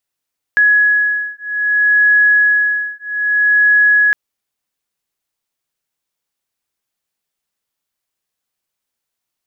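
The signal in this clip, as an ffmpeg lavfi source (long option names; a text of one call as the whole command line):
ffmpeg -f lavfi -i "aevalsrc='0.224*(sin(2*PI*1680*t)+sin(2*PI*1680.62*t))':duration=3.56:sample_rate=44100" out.wav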